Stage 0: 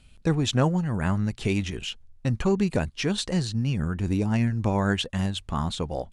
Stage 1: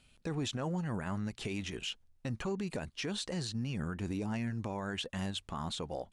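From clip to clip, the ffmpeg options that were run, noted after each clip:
-af "lowshelf=f=130:g=-11.5,alimiter=limit=0.0668:level=0:latency=1:release=47,volume=0.596"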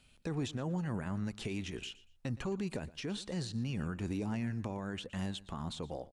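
-filter_complex "[0:a]acrossover=split=440[s0][s1];[s1]acompressor=threshold=0.00794:ratio=6[s2];[s0][s2]amix=inputs=2:normalize=0,aecho=1:1:118|236:0.112|0.0258"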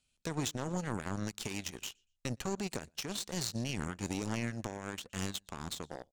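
-af "equalizer=f=6700:t=o:w=1.4:g=12,aeval=exprs='0.0841*(cos(1*acos(clip(val(0)/0.0841,-1,1)))-cos(1*PI/2))+0.0106*(cos(7*acos(clip(val(0)/0.0841,-1,1)))-cos(7*PI/2))':c=same,volume=1.26"

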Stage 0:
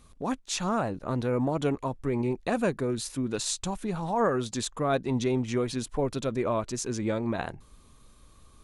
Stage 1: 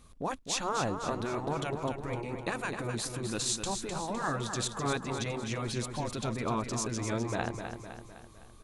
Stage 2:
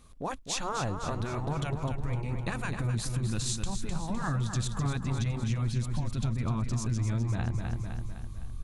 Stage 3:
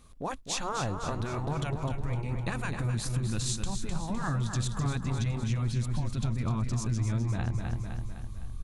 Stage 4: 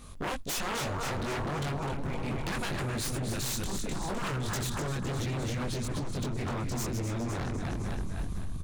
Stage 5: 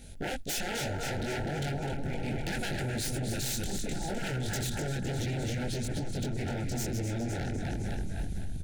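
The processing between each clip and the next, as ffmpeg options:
-af "aeval=exprs='0.224*(cos(1*acos(clip(val(0)/0.224,-1,1)))-cos(1*PI/2))+0.00708*(cos(3*acos(clip(val(0)/0.224,-1,1)))-cos(3*PI/2))':c=same,afftfilt=real='re*lt(hypot(re,im),0.224)':imag='im*lt(hypot(re,im),0.224)':win_size=1024:overlap=0.75,aecho=1:1:255|510|765|1020|1275|1530:0.422|0.215|0.11|0.0559|0.0285|0.0145"
-af "asubboost=boost=10:cutoff=140,acompressor=threshold=0.0501:ratio=6"
-af "aecho=1:1:279:0.168"
-filter_complex "[0:a]asplit=2[s0][s1];[s1]adelay=21,volume=0.794[s2];[s0][s2]amix=inputs=2:normalize=0,acompressor=threshold=0.0251:ratio=6,aeval=exprs='0.0178*(abs(mod(val(0)/0.0178+3,4)-2)-1)':c=same,volume=2.37"
-af "asuperstop=centerf=1100:order=12:qfactor=2.3"

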